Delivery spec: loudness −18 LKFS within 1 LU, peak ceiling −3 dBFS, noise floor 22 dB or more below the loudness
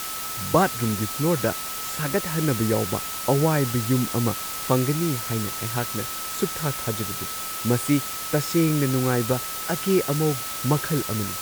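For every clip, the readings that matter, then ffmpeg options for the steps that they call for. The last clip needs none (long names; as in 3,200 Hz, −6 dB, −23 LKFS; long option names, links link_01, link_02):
interfering tone 1,300 Hz; level of the tone −36 dBFS; background noise floor −32 dBFS; target noise floor −46 dBFS; integrated loudness −24.0 LKFS; sample peak −6.0 dBFS; target loudness −18.0 LKFS
→ -af "bandreject=frequency=1300:width=30"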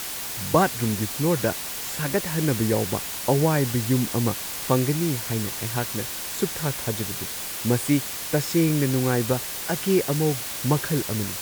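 interfering tone none found; background noise floor −32 dBFS; target noise floor −46 dBFS
→ -af "afftdn=noise_reduction=14:noise_floor=-32"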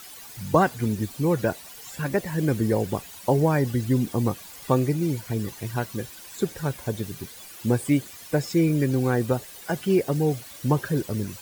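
background noise floor −44 dBFS; target noise floor −48 dBFS
→ -af "afftdn=noise_reduction=6:noise_floor=-44"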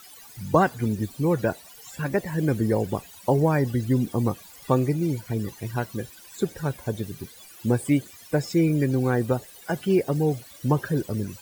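background noise floor −48 dBFS; integrated loudness −25.5 LKFS; sample peak −6.5 dBFS; target loudness −18.0 LKFS
→ -af "volume=7.5dB,alimiter=limit=-3dB:level=0:latency=1"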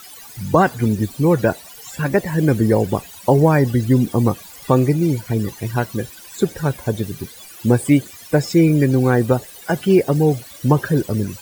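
integrated loudness −18.0 LKFS; sample peak −3.0 dBFS; background noise floor −40 dBFS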